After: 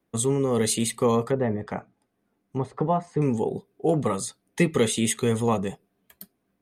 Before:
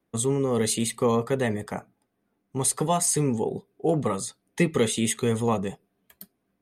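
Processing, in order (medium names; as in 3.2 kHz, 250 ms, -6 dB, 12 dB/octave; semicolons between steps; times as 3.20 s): 1.25–3.22 s: low-pass that closes with the level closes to 1.2 kHz, closed at -23 dBFS; trim +1 dB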